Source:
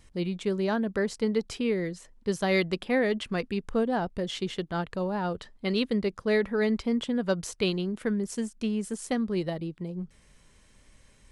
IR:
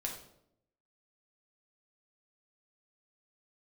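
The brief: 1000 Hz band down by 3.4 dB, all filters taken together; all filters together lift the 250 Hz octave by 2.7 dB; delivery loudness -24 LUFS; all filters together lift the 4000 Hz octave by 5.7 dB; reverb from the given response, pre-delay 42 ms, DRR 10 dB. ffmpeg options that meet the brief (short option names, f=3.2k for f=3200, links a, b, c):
-filter_complex "[0:a]equalizer=f=250:t=o:g=3.5,equalizer=f=1k:t=o:g=-5.5,equalizer=f=4k:t=o:g=7.5,asplit=2[a][b];[1:a]atrim=start_sample=2205,adelay=42[c];[b][c]afir=irnorm=-1:irlink=0,volume=-10.5dB[d];[a][d]amix=inputs=2:normalize=0,volume=3dB"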